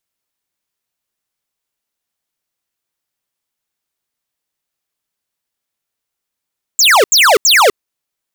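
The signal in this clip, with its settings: burst of laser zaps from 7.8 kHz, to 370 Hz, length 0.25 s square, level -8 dB, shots 3, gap 0.08 s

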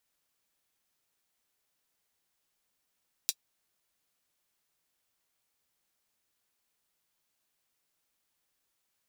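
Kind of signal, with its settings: closed hi-hat, high-pass 4.1 kHz, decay 0.06 s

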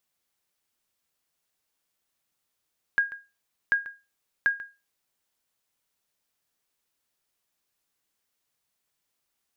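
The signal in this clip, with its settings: sonar ping 1.63 kHz, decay 0.27 s, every 0.74 s, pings 3, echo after 0.14 s, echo -17 dB -14.5 dBFS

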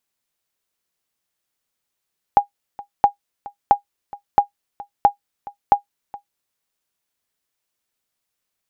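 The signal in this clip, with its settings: sonar ping 813 Hz, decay 0.11 s, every 0.67 s, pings 6, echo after 0.42 s, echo -21 dB -2.5 dBFS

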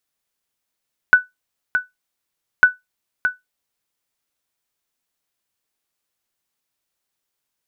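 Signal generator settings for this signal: sonar ping 1.49 kHz, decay 0.17 s, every 1.50 s, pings 2, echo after 0.62 s, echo -8.5 dB -1.5 dBFS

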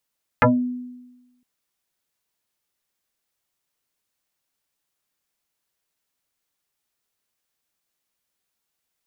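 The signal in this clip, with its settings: FM tone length 1.01 s, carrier 248 Hz, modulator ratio 1.49, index 5.7, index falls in 0.23 s exponential, decay 1.12 s, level -10 dB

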